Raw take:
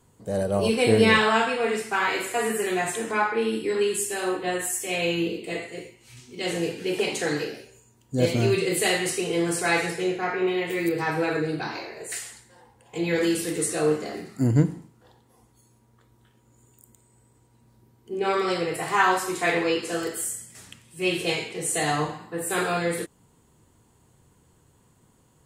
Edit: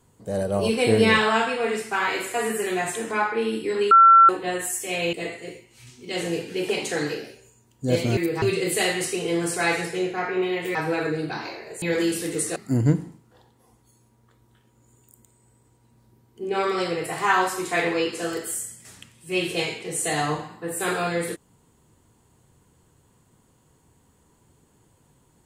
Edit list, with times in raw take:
0:03.91–0:04.29: beep over 1,350 Hz −8.5 dBFS
0:05.13–0:05.43: remove
0:10.80–0:11.05: move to 0:08.47
0:12.12–0:13.05: remove
0:13.79–0:14.26: remove

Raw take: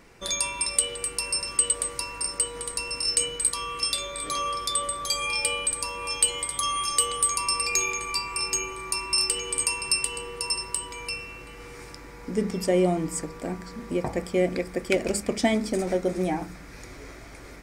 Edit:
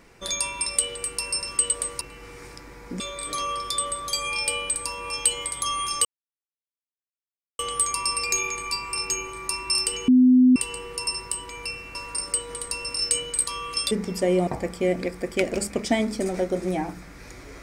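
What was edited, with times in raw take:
0:02.01–0:03.97: swap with 0:11.38–0:12.37
0:07.02: splice in silence 1.54 s
0:09.51–0:09.99: beep over 253 Hz −11.5 dBFS
0:12.93–0:14.00: remove

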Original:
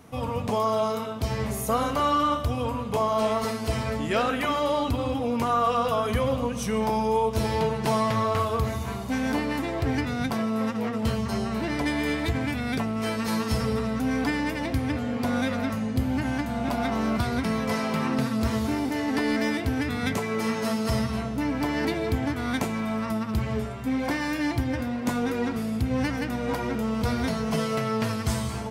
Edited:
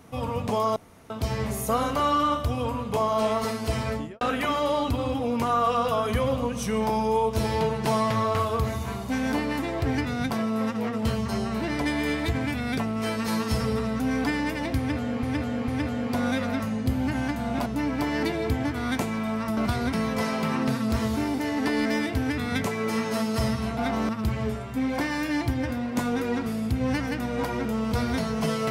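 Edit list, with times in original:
0:00.76–0:01.10: fill with room tone
0:03.91–0:04.21: fade out and dull
0:14.78–0:15.23: repeat, 3 plays
0:16.76–0:17.08: swap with 0:21.28–0:23.19

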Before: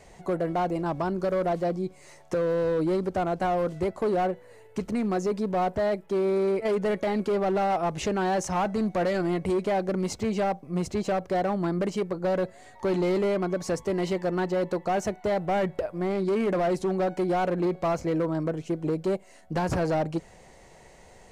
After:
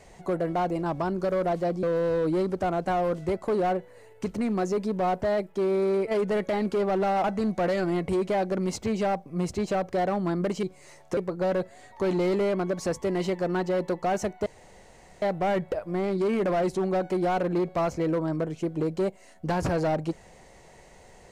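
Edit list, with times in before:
0:01.83–0:02.37: move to 0:12.00
0:07.78–0:08.61: remove
0:15.29: splice in room tone 0.76 s

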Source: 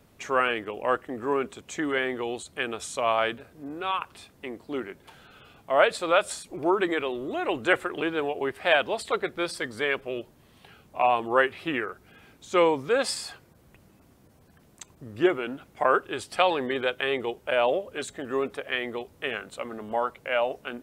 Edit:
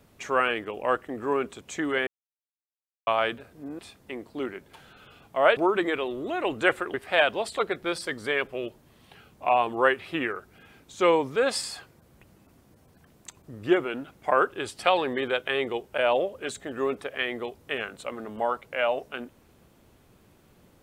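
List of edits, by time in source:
0:02.07–0:03.07: silence
0:03.79–0:04.13: remove
0:05.91–0:06.61: remove
0:07.98–0:08.47: remove

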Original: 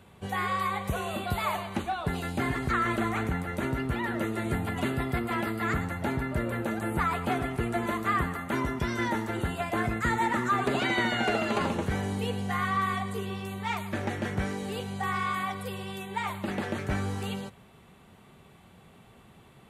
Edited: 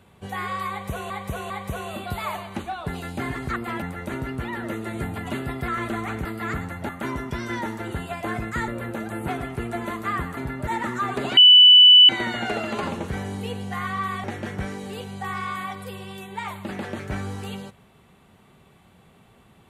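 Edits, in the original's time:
0:00.70–0:01.10: repeat, 3 plays
0:02.76–0:03.33: swap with 0:05.19–0:05.45
0:06.09–0:06.39: swap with 0:08.38–0:10.17
0:06.99–0:07.29: remove
0:10.87: insert tone 2,980 Hz −7 dBFS 0.72 s
0:13.02–0:14.03: remove

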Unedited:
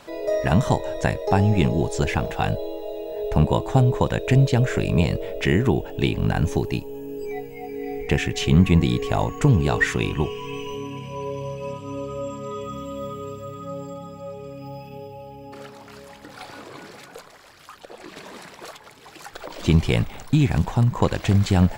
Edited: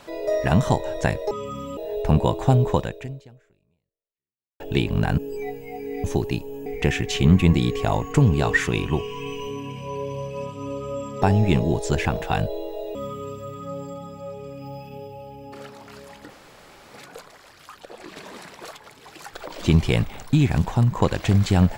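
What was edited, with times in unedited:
0:01.31–0:03.04: swap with 0:12.49–0:12.95
0:04.04–0:05.87: fade out exponential
0:06.45–0:07.07: move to 0:07.93
0:16.30–0:16.94: fill with room tone

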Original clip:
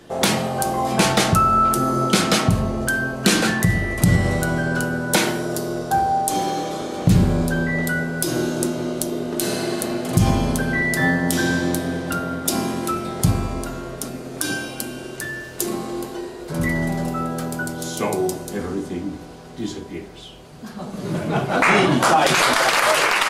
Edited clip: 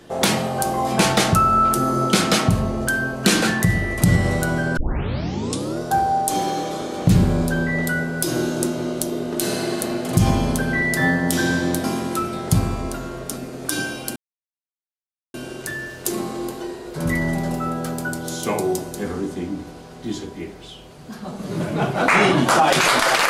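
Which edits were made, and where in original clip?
0:04.77: tape start 1.03 s
0:11.84–0:12.56: remove
0:14.88: splice in silence 1.18 s

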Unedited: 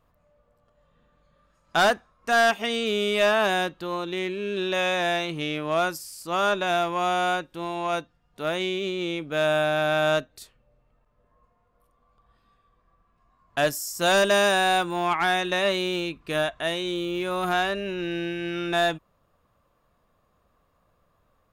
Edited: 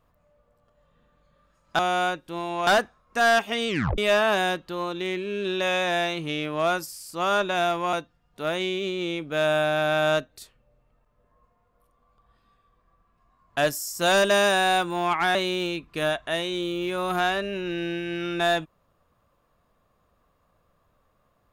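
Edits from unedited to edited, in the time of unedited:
0:02.80: tape stop 0.30 s
0:07.05–0:07.93: move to 0:01.79
0:15.35–0:15.68: remove

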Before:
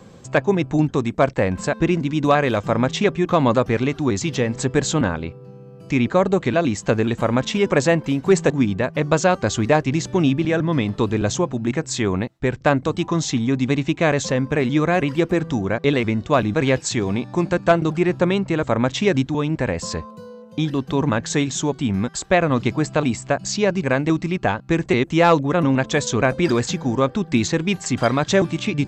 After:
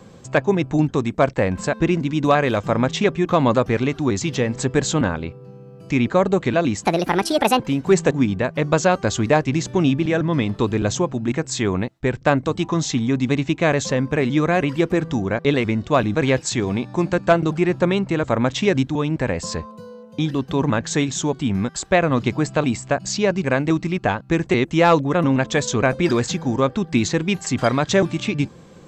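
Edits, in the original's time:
0:06.84–0:07.99: play speed 152%

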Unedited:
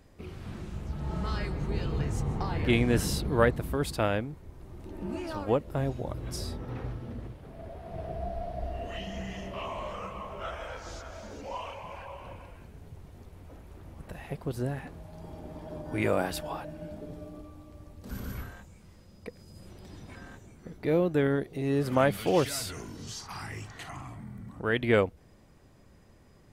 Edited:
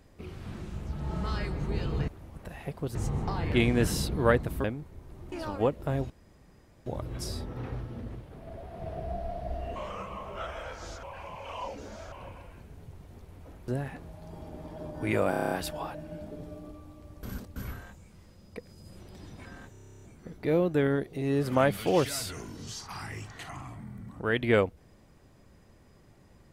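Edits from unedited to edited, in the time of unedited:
0:03.77–0:04.15: remove
0:04.83–0:05.20: remove
0:05.98: splice in room tone 0.76 s
0:08.88–0:09.80: remove
0:11.07–0:12.16: reverse
0:13.72–0:14.59: move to 0:02.08
0:16.21: stutter 0.03 s, 8 plays
0:17.93–0:18.26: reverse
0:20.42: stutter 0.03 s, 11 plays

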